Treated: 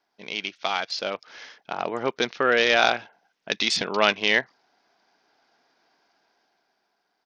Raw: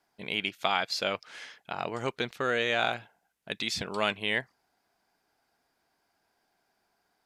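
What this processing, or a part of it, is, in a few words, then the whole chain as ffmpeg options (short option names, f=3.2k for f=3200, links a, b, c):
Bluetooth headset: -filter_complex "[0:a]asettb=1/sr,asplit=3[a][b][c];[a]atrim=end=0.994[d];[b]atrim=start=0.99:end=2.22,asetpts=PTS-STARTPTS,afade=t=in:d=0.004:c=qsin,afade=t=out:st=1.226:d=0.004:c=qsin,equalizer=f=2.6k:t=o:w=2.1:g=-4.5[e];[c]atrim=start=2.216[f];[d][e]acrossfade=d=0.004:c1=hsin:c2=qsin[g];[g][f]acrossfade=d=0.004:c1=qsin:c2=hsin,highpass=220,dynaudnorm=f=200:g=13:m=10.5dB,aresample=16000,aresample=44100" -ar 48000 -c:a sbc -b:a 64k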